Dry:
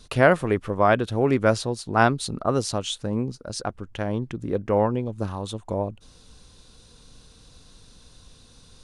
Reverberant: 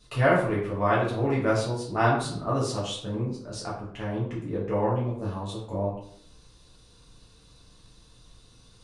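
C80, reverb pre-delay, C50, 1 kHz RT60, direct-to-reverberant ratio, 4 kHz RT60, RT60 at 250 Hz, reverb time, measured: 8.0 dB, 5 ms, 4.0 dB, 0.65 s, -7.5 dB, 0.40 s, 0.75 s, 0.65 s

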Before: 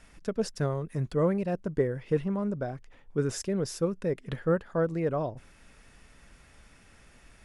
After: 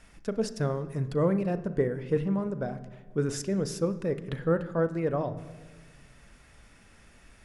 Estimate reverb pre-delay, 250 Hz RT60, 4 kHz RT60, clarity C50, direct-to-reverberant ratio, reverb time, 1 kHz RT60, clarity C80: 36 ms, 1.9 s, 1.1 s, 13.5 dB, 11.5 dB, 1.5 s, 1.5 s, 16.0 dB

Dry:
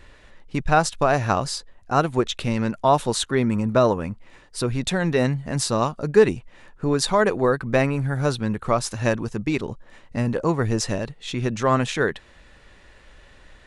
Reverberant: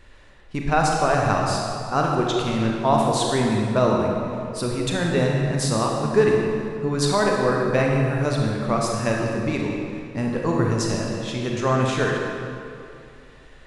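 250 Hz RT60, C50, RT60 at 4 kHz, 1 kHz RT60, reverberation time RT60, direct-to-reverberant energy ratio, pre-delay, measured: 2.6 s, 0.0 dB, 1.7 s, 2.5 s, 2.5 s, -1.0 dB, 29 ms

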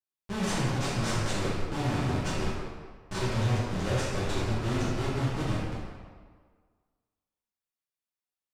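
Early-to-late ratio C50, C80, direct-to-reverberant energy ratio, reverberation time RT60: -2.0 dB, 0.5 dB, -10.0 dB, 1.6 s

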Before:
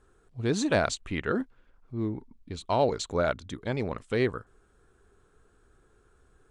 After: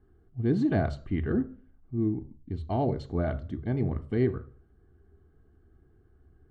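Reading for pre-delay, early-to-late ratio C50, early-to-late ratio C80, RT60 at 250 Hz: 3 ms, 15.5 dB, 20.5 dB, 0.50 s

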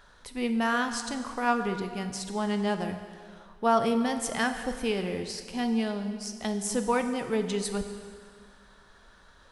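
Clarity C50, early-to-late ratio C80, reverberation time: 8.5 dB, 9.5 dB, 2.0 s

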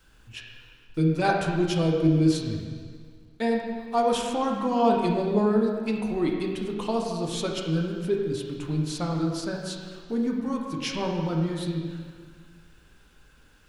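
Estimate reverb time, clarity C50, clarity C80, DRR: 1.9 s, 2.0 dB, 3.5 dB, -0.5 dB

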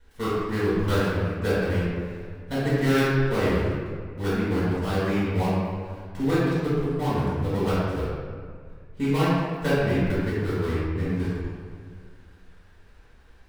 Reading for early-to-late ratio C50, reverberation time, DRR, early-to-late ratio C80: -4.0 dB, 1.9 s, -11.5 dB, -1.0 dB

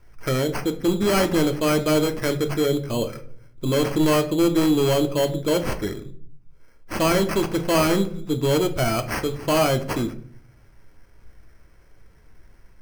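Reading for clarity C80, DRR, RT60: 18.0 dB, 6.5 dB, 0.55 s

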